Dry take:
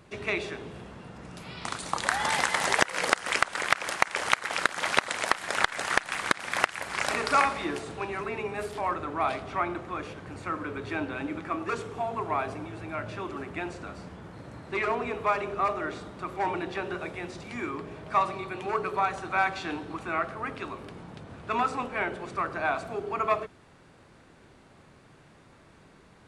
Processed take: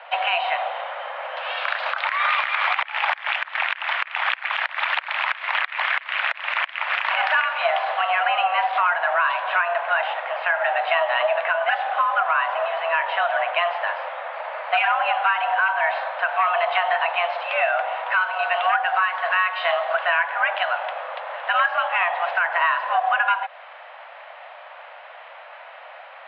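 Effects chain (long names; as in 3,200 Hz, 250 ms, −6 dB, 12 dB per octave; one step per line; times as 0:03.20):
single-sideband voice off tune +340 Hz 250–3,000 Hz
downward compressor 6 to 1, threshold −33 dBFS, peak gain reduction 16 dB
boost into a limiter +25 dB
level −8.5 dB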